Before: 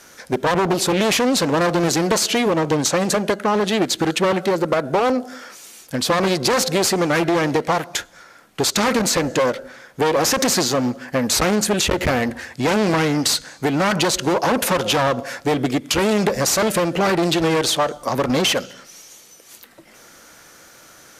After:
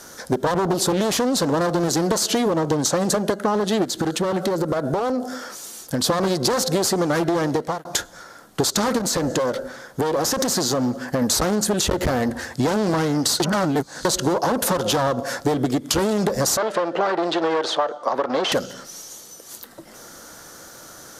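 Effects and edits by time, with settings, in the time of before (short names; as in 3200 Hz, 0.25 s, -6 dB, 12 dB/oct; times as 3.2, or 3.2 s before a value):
3.84–6.04 compressor, threshold -22 dBFS
7.42–7.85 fade out
8.98–11.22 compressor 4:1, threshold -21 dBFS
13.4–14.05 reverse
16.57–18.52 BPF 480–2900 Hz
whole clip: bell 2400 Hz -11 dB 0.77 oct; compressor, threshold -23 dBFS; gain +5.5 dB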